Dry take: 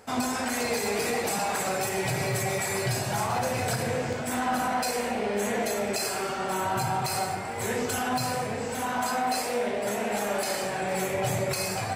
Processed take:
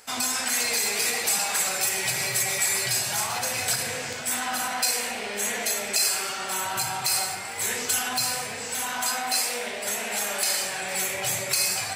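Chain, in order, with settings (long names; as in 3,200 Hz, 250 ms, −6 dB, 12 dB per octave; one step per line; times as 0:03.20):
tilt shelving filter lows −10 dB, about 1,300 Hz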